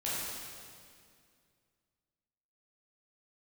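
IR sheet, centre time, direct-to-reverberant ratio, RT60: 0.142 s, -9.0 dB, 2.2 s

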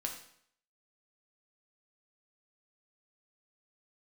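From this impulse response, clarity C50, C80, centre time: 7.0 dB, 10.0 dB, 22 ms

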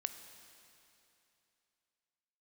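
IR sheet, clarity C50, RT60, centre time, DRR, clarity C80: 9.5 dB, 2.9 s, 28 ms, 8.5 dB, 10.0 dB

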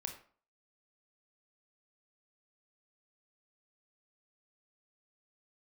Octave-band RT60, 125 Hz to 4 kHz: 0.40, 0.45, 0.45, 0.45, 0.40, 0.30 s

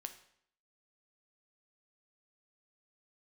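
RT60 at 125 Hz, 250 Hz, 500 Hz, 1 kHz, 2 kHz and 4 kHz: 0.65, 0.70, 0.65, 0.65, 0.65, 0.60 s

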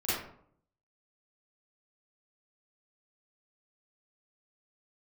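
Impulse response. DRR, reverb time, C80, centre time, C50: -13.0 dB, 0.65 s, 3.5 dB, 71 ms, -2.5 dB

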